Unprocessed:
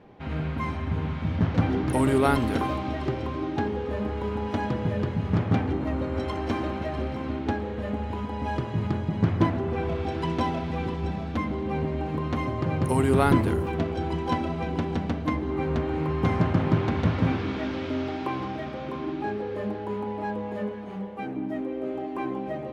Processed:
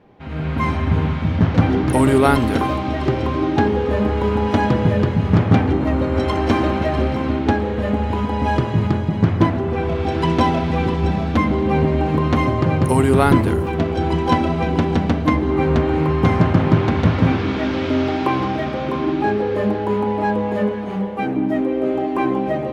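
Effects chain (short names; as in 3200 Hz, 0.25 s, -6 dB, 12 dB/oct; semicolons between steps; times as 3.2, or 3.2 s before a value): AGC gain up to 11.5 dB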